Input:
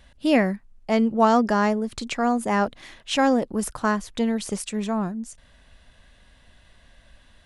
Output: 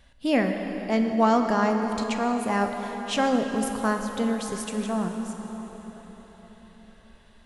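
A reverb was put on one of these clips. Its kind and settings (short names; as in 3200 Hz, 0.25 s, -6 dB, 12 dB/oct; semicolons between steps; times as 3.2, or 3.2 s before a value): plate-style reverb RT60 5 s, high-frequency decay 0.65×, DRR 4 dB; gain -3.5 dB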